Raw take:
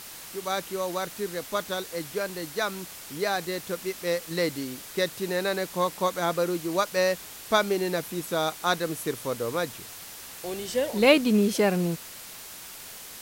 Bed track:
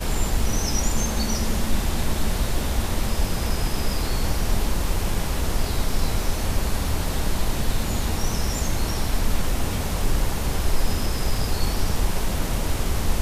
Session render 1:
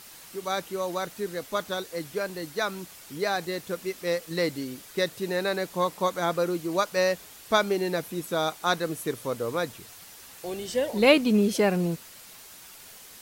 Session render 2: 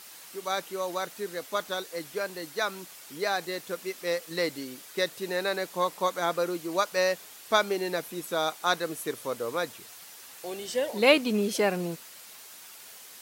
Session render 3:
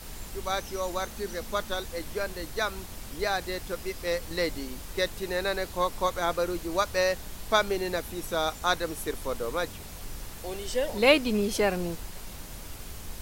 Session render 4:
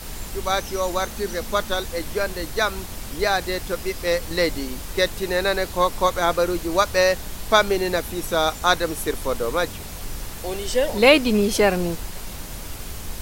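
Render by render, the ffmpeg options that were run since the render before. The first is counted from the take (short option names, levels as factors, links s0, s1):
-af "afftdn=nr=6:nf=-43"
-af "highpass=f=390:p=1"
-filter_complex "[1:a]volume=0.119[s0];[0:a][s0]amix=inputs=2:normalize=0"
-af "volume=2.37,alimiter=limit=0.794:level=0:latency=1"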